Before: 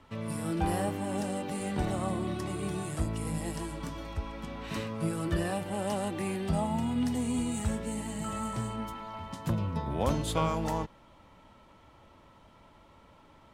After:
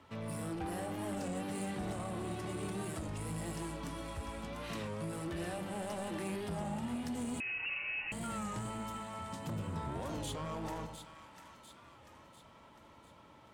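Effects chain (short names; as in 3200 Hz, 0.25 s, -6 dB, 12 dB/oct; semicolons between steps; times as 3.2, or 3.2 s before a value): HPF 68 Hz; notches 50/100/150/200/250 Hz; limiter -26.5 dBFS, peak gain reduction 11.5 dB; soft clip -33.5 dBFS, distortion -13 dB; on a send: split-band echo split 1100 Hz, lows 92 ms, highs 0.697 s, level -8.5 dB; 7.4–8.12 on the sum: inverted band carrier 2800 Hz; record warp 33 1/3 rpm, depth 100 cents; gain -1.5 dB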